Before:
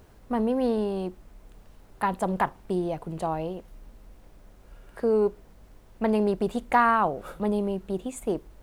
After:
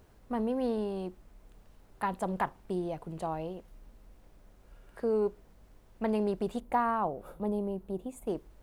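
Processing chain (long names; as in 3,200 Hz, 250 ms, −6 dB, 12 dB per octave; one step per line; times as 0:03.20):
0:06.60–0:08.27: flat-topped bell 3,300 Hz −8 dB 3 octaves
level −6 dB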